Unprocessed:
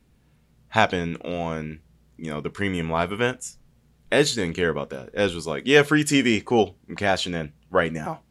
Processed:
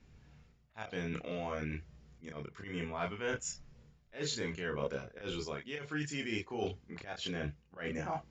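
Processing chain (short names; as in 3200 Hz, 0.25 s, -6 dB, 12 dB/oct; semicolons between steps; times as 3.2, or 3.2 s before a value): reverse; compressor 12:1, threshold -33 dBFS, peak gain reduction 23 dB; reverse; rippled Chebyshev low-pass 7200 Hz, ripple 3 dB; auto swell 0.132 s; chorus voices 6, 0.48 Hz, delay 28 ms, depth 1.5 ms; gain +4.5 dB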